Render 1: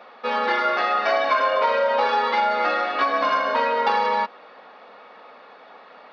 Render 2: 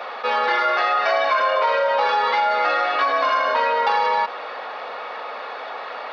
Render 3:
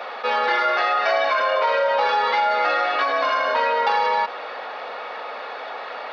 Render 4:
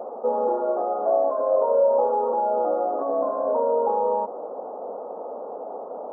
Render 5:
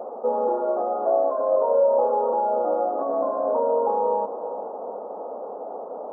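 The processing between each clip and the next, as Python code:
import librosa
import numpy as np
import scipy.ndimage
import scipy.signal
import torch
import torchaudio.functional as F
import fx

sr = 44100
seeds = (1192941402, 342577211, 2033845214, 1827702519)

y1 = scipy.signal.sosfilt(scipy.signal.butter(2, 450.0, 'highpass', fs=sr, output='sos'), x)
y1 = fx.env_flatten(y1, sr, amount_pct=50)
y2 = fx.peak_eq(y1, sr, hz=1100.0, db=-3.0, octaves=0.31)
y3 = scipy.ndimage.gaussian_filter1d(y2, 14.0, mode='constant')
y3 = F.gain(torch.from_numpy(y3), 8.5).numpy()
y4 = fx.echo_diffused(y3, sr, ms=488, feedback_pct=45, wet_db=-14)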